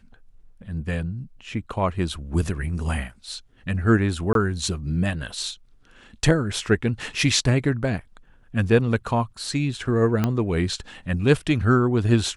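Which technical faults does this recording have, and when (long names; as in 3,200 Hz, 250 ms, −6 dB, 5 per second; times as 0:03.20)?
0:04.33–0:04.35: drop-out 22 ms
0:10.24: click −9 dBFS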